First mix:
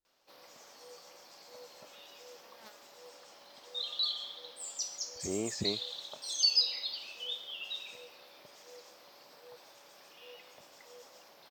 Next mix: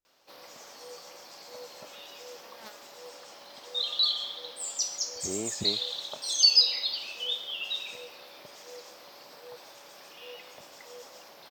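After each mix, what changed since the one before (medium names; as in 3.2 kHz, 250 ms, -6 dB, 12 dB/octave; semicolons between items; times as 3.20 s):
background +7.0 dB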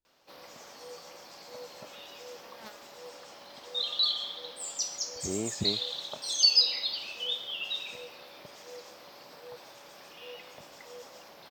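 master: add tone controls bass +5 dB, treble -3 dB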